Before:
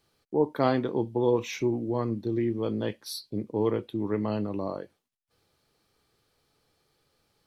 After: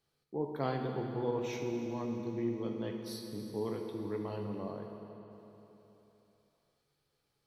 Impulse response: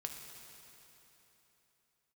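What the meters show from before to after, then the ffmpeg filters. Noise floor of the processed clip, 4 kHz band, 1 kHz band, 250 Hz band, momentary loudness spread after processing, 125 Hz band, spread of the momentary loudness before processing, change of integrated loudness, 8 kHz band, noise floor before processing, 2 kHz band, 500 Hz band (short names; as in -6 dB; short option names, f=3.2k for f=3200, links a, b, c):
-80 dBFS, -9.0 dB, -8.0 dB, -8.5 dB, 13 LU, -7.5 dB, 9 LU, -9.0 dB, -8.5 dB, -80 dBFS, -8.5 dB, -9.0 dB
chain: -filter_complex "[1:a]atrim=start_sample=2205[a];[0:a][a]afir=irnorm=-1:irlink=0,volume=-7dB"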